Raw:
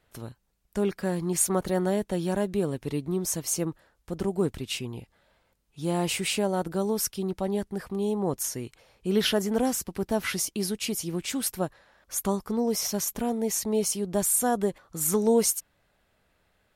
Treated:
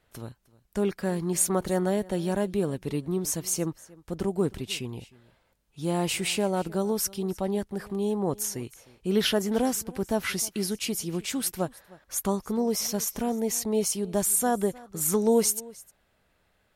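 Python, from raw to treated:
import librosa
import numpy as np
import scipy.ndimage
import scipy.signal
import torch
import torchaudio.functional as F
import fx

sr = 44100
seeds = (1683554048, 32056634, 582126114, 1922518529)

y = x + 10.0 ** (-22.0 / 20.0) * np.pad(x, (int(308 * sr / 1000.0), 0))[:len(x)]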